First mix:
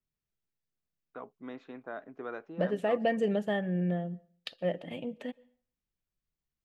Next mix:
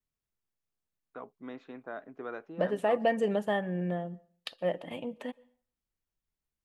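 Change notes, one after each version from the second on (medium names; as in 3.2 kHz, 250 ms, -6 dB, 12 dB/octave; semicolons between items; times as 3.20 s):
second voice: add fifteen-band graphic EQ 160 Hz -4 dB, 1 kHz +9 dB, 10 kHz +8 dB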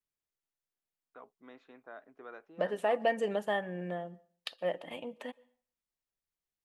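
first voice -6.0 dB; master: add bass shelf 270 Hz -12 dB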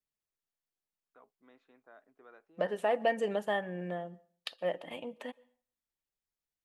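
first voice -8.5 dB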